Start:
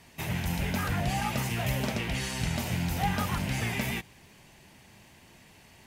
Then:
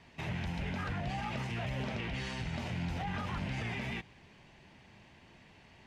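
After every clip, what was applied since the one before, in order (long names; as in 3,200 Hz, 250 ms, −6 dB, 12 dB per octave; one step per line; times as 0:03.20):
brickwall limiter −25.5 dBFS, peak gain reduction 10.5 dB
low-pass filter 3,900 Hz 12 dB per octave
level −2.5 dB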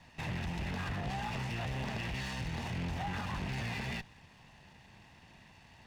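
lower of the sound and its delayed copy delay 1.1 ms
in parallel at −9 dB: wave folding −36 dBFS
on the sum: level −1 dB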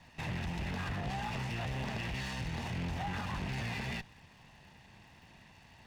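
surface crackle 91 per second −57 dBFS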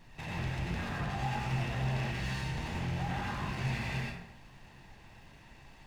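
dense smooth reverb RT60 0.79 s, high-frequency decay 0.6×, pre-delay 75 ms, DRR −3 dB
background noise brown −53 dBFS
level −3 dB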